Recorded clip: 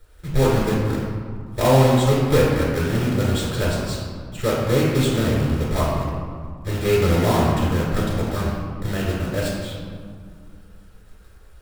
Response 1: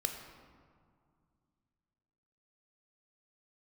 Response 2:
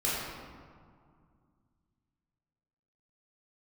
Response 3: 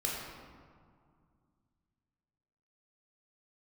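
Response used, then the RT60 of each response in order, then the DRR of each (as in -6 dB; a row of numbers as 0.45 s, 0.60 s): 3; 2.1 s, 2.1 s, 2.1 s; 3.5 dB, -9.0 dB, -4.5 dB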